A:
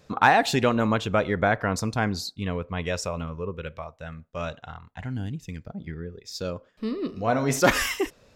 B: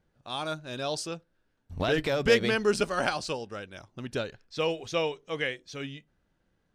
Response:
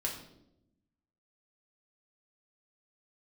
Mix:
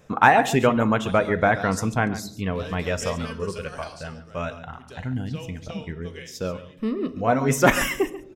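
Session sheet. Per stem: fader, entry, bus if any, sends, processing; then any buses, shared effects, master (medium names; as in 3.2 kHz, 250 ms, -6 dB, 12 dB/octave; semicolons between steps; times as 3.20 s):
+1.0 dB, 0.00 s, send -10 dB, echo send -12.5 dB, reverb removal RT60 0.55 s; peaking EQ 4.4 kHz -14.5 dB 0.41 oct
-18.0 dB, 0.75 s, send -3 dB, no echo send, treble shelf 4.3 kHz +9.5 dB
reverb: on, RT60 0.85 s, pre-delay 4 ms
echo: delay 138 ms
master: none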